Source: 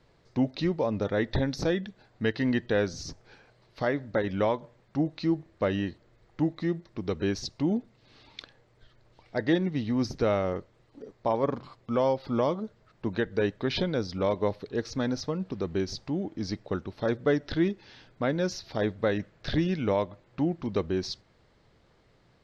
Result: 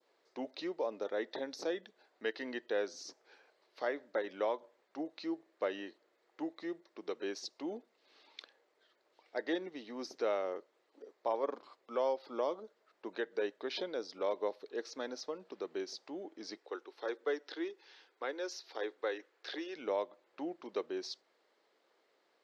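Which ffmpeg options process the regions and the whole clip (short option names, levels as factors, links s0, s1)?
-filter_complex "[0:a]asettb=1/sr,asplit=3[s0][s1][s2];[s0]atrim=end=16.574[s3];[s1]atrim=start=16.57:end=19.76,asetpts=PTS-STARTPTS,afade=t=in:d=0.004:c=qsin,afade=t=out:st=3.186:d=0.004:c=qsin,highpass=f=320:w=0.5412,highpass=f=320:w=1.3066,equalizer=f=620:w=7.6:g=-12[s4];[s2]atrim=start=19.756[s5];[s3][s4]acrossfade=d=0.004:c1=hsin:c2=qsin[s6];[s6][s5]acrossfade=d=0.004:c1=qsin:c2=hsin,adynamicequalizer=threshold=0.00631:dfrequency=2000:dqfactor=0.78:tfrequency=2000:tqfactor=0.78:attack=5:release=100:ratio=0.375:range=2:mode=cutabove:tftype=bell,highpass=f=350:w=0.5412,highpass=f=350:w=1.3066,volume=0.447"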